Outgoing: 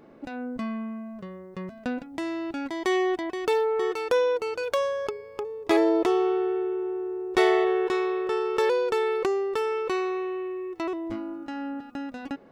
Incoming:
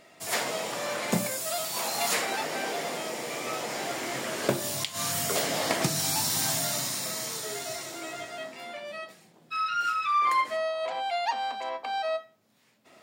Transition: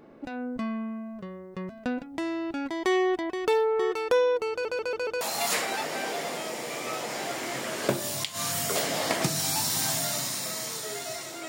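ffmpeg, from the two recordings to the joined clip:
-filter_complex "[0:a]apad=whole_dur=11.48,atrim=end=11.48,asplit=5[s0][s1][s2][s3][s4];[s0]atrim=end=4.652[s5];[s1]atrim=start=4.508:end=4.652[s6];[s2]atrim=start=4.508:end=4.652[s7];[s3]atrim=start=4.508:end=4.652[s8];[s4]atrim=start=4.508:end=4.652[s9];[1:a]atrim=start=1.808:end=8.08[s10];[s5][s6]acrossfade=d=0.004:c1=hsin:c2=hsin[s11];[s11][s7]acrossfade=d=0.004:c1=hsin:c2=hsin[s12];[s12][s8]acrossfade=d=0.004:c1=hsin:c2=hsin[s13];[s13][s9]acrossfade=d=0.004:c1=hsin:c2=hsin[s14];[s14][s10]acrossfade=d=0.004:c1=hsin:c2=hsin"

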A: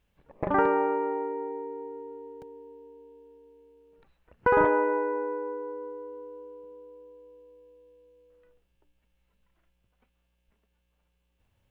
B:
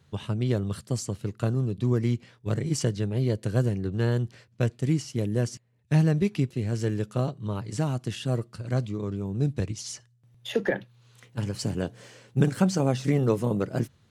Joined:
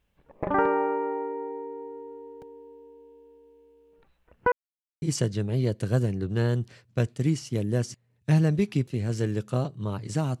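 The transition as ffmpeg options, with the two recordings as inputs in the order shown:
-filter_complex "[0:a]apad=whole_dur=10.4,atrim=end=10.4,asplit=2[s0][s1];[s0]atrim=end=4.52,asetpts=PTS-STARTPTS,afade=t=out:st=4.516:d=0.004:c=hsin[s2];[s1]atrim=start=4.52:end=5.02,asetpts=PTS-STARTPTS,volume=0[s3];[1:a]atrim=start=2.65:end=8.03,asetpts=PTS-STARTPTS,afade=t=in:d=0.004:c=hsin[s4];[s2][s3][s4]concat=n=3:v=0:a=1"

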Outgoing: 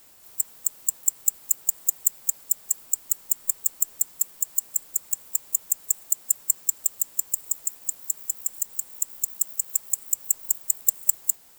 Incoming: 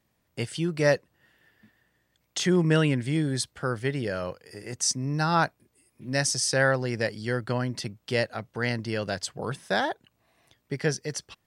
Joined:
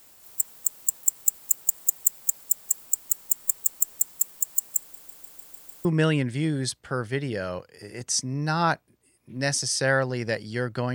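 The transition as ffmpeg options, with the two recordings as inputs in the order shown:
-filter_complex "[0:a]apad=whole_dur=10.94,atrim=end=10.94,asplit=7[s0][s1][s2][s3][s4][s5][s6];[s0]atrim=end=4.952[s7];[s1]atrim=start=4.798:end=4.952[s8];[s2]atrim=start=4.798:end=4.952[s9];[s3]atrim=start=4.798:end=4.952[s10];[s4]atrim=start=4.798:end=4.952[s11];[s5]atrim=start=4.798:end=4.952[s12];[s6]atrim=start=4.798:end=4.952[s13];[1:a]atrim=start=2.568:end=7.66[s14];[s7][s8]acrossfade=d=0.004:c1=hsin:c2=hsin[s15];[s15][s9]acrossfade=d=0.004:c1=hsin:c2=hsin[s16];[s16][s10]acrossfade=d=0.004:c1=hsin:c2=hsin[s17];[s17][s11]acrossfade=d=0.004:c1=hsin:c2=hsin[s18];[s18][s12]acrossfade=d=0.004:c1=hsin:c2=hsin[s19];[s19][s13]acrossfade=d=0.004:c1=hsin:c2=hsin[s20];[s20][s14]acrossfade=d=0.004:c1=hsin:c2=hsin"

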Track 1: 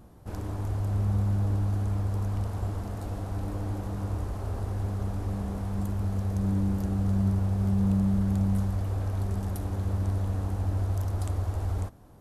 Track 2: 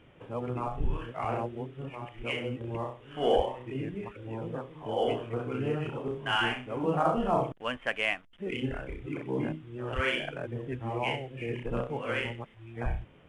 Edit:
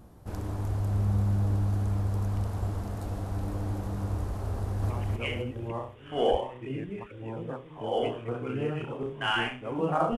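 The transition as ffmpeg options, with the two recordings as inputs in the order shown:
-filter_complex "[0:a]apad=whole_dur=10.17,atrim=end=10.17,atrim=end=4.902[s0];[1:a]atrim=start=1.948:end=7.22[s1];[s0][s1]acrossfade=d=0.004:c1=hsin:c2=hsin,asplit=2[s2][s3];[s3]afade=t=in:st=4.56:d=0.01,afade=t=out:st=4.9:d=0.01,aecho=0:1:260|520|780|1040|1300|1560:0.944061|0.424827|0.191172|0.0860275|0.0387124|0.0174206[s4];[s2][s4]amix=inputs=2:normalize=0"

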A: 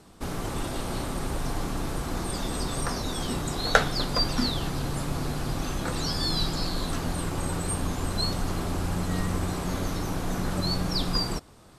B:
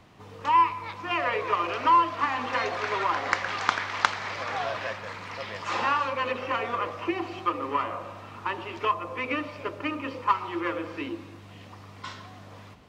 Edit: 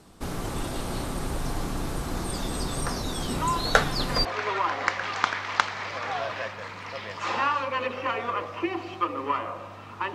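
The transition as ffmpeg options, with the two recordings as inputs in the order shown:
-filter_complex "[1:a]asplit=2[s0][s1];[0:a]apad=whole_dur=10.14,atrim=end=10.14,atrim=end=4.252[s2];[s1]atrim=start=2.698:end=8.59[s3];[s0]atrim=start=1.79:end=2.7,asetpts=PTS-STARTPTS,volume=0.376,afade=t=in:d=0.004:c=hsin,afade=t=out:st=0.906:d=0.004:c=hsin,adelay=3340[s4];[s2][s3]acrossfade=d=0.004:c1=hsin:c2=hsin[s5];[s5][s4]amix=inputs=2:normalize=0"

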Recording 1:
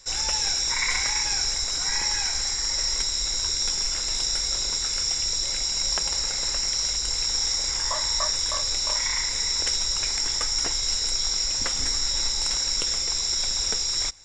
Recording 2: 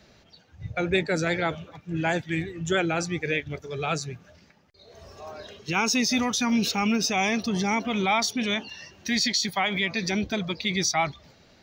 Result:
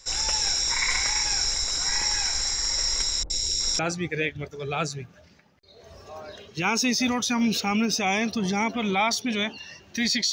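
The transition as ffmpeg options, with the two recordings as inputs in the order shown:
-filter_complex "[0:a]asettb=1/sr,asplit=3[s0][s1][s2];[s0]atrim=end=3.234[s3];[s1]atrim=start=3.23:end=3.79,asetpts=PTS-STARTPTS,afade=t=in:d=0.004:c=qsin,afade=t=out:st=0.556:d=0.004:c=qsin,acrossover=split=700|2100[s4][s5][s6];[s6]adelay=70[s7];[s5]adelay=370[s8];[s4][s8][s7]amix=inputs=3:normalize=0,atrim=end_sample=24696[s9];[s2]atrim=start=3.786[s10];[s3][s9]acrossfade=d=0.004:c1=hsin:c2=qsin[s11];[s11][s10]acrossfade=d=0.004:c1=qsin:c2=hsin,apad=whole_dur=10.32,atrim=end=10.32,atrim=end=3.792[s12];[1:a]atrim=start=2.898:end=9.43[s13];[s12][s13]acrossfade=d=0.004:c1=hsin:c2=hsin"

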